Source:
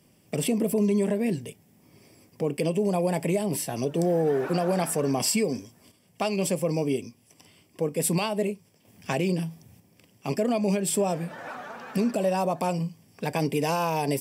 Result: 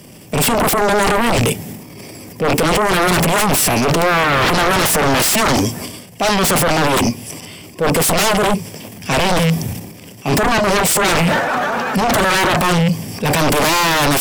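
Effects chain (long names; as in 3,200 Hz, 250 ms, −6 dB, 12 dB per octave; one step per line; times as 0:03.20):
loose part that buzzes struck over −36 dBFS, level −32 dBFS
transient designer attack −9 dB, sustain +10 dB
sine wavefolder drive 17 dB, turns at −11 dBFS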